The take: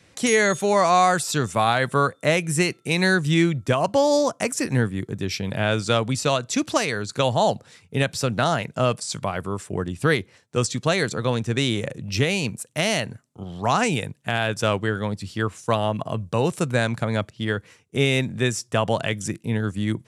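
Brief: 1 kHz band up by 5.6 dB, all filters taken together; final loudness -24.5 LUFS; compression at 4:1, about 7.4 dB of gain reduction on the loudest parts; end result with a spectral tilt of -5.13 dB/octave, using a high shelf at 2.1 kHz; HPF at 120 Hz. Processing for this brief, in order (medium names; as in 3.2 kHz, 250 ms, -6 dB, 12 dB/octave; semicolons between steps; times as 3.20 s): high-pass 120 Hz; peaking EQ 1 kHz +8.5 dB; treble shelf 2.1 kHz -5 dB; compression 4:1, threshold -18 dBFS; trim +0.5 dB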